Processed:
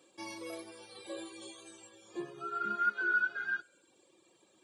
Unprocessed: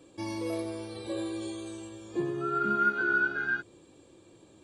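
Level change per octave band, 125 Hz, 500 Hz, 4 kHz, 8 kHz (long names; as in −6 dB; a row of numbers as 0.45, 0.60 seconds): −19.0, −11.0, −3.5, −3.0 decibels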